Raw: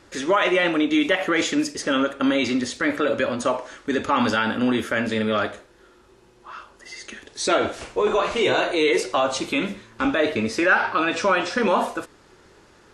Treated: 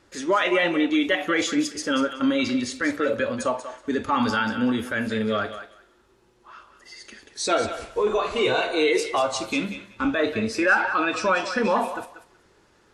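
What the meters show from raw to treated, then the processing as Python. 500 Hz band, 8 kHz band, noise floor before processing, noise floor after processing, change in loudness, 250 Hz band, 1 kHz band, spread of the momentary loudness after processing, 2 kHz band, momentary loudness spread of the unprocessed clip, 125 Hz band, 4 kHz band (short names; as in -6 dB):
-2.0 dB, -1.0 dB, -54 dBFS, -60 dBFS, -2.0 dB, -1.5 dB, -1.5 dB, 9 LU, -1.5 dB, 11 LU, -1.5 dB, -2.0 dB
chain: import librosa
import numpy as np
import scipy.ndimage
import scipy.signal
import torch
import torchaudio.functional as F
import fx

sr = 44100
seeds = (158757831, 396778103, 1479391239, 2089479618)

y = fx.noise_reduce_blind(x, sr, reduce_db=6)
y = fx.echo_thinned(y, sr, ms=188, feedback_pct=18, hz=580.0, wet_db=-10)
y = F.gain(torch.from_numpy(y), -1.0).numpy()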